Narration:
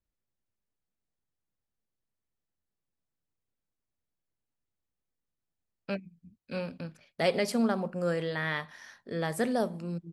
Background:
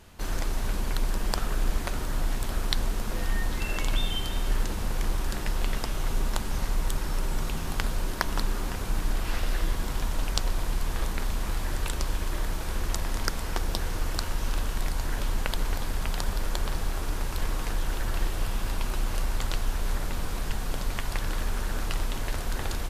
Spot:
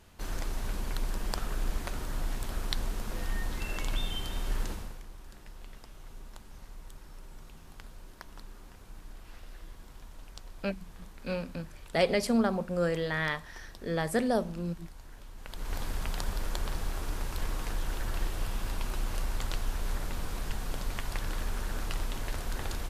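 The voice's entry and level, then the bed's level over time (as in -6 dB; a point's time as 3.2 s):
4.75 s, +1.0 dB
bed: 4.71 s -5.5 dB
5.05 s -20 dB
15.35 s -20 dB
15.77 s -4.5 dB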